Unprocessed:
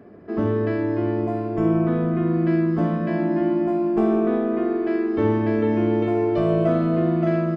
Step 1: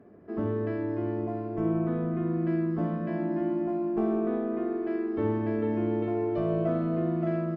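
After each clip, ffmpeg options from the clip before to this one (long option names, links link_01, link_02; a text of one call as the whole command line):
ffmpeg -i in.wav -af "highshelf=frequency=3000:gain=-9.5,volume=-7.5dB" out.wav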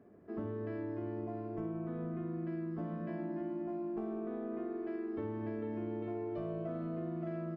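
ffmpeg -i in.wav -af "acompressor=threshold=-29dB:ratio=6,volume=-6.5dB" out.wav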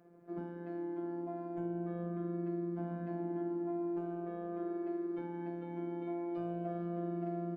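ffmpeg -i in.wav -af "afftfilt=real='hypot(re,im)*cos(PI*b)':imag='0':win_size=1024:overlap=0.75,lowshelf=frequency=98:gain=-10.5,volume=3.5dB" out.wav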